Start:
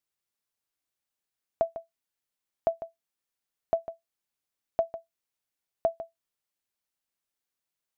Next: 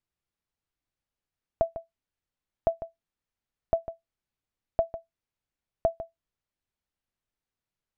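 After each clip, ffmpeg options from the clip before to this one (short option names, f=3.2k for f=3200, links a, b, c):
-af "aemphasis=mode=reproduction:type=bsi"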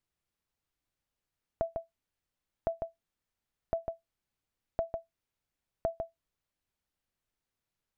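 -af "alimiter=limit=-17.5dB:level=0:latency=1:release=40,acompressor=threshold=-30dB:ratio=6,volume=1.5dB"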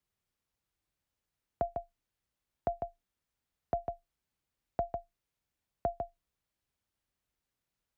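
-af "afreqshift=25"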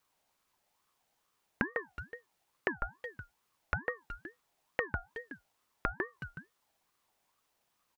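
-filter_complex "[0:a]asplit=2[a][b];[b]adelay=370,highpass=300,lowpass=3.4k,asoftclip=type=hard:threshold=-28dB,volume=-18dB[c];[a][c]amix=inputs=2:normalize=0,acompressor=threshold=-39dB:ratio=12,aeval=exprs='val(0)*sin(2*PI*950*n/s+950*0.25/2.3*sin(2*PI*2.3*n/s))':c=same,volume=12.5dB"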